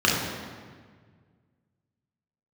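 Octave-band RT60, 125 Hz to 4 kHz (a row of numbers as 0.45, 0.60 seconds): 2.6, 2.1, 1.7, 1.6, 1.5, 1.2 seconds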